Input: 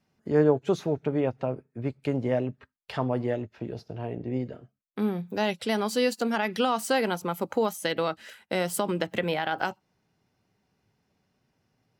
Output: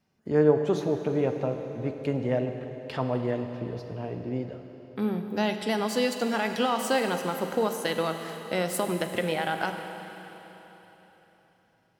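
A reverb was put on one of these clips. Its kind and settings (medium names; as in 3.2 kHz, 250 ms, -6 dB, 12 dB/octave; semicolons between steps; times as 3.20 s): Schroeder reverb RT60 3.8 s, combs from 33 ms, DRR 6 dB; trim -1 dB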